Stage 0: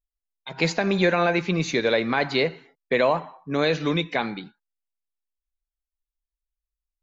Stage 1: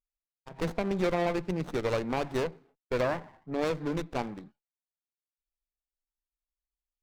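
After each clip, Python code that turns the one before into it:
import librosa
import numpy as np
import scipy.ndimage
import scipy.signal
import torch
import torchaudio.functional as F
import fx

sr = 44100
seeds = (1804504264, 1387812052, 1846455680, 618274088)

y = fx.wiener(x, sr, points=15)
y = fx.running_max(y, sr, window=17)
y = y * librosa.db_to_amplitude(-7.0)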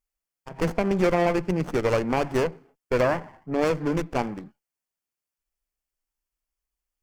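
y = fx.peak_eq(x, sr, hz=3800.0, db=-11.5, octaves=0.22)
y = y * librosa.db_to_amplitude(6.5)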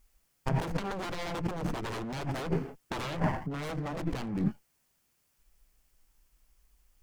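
y = fx.bass_treble(x, sr, bass_db=8, treble_db=0)
y = 10.0 ** (-22.5 / 20.0) * (np.abs((y / 10.0 ** (-22.5 / 20.0) + 3.0) % 4.0 - 2.0) - 1.0)
y = fx.over_compress(y, sr, threshold_db=-39.0, ratio=-1.0)
y = y * librosa.db_to_amplitude(5.5)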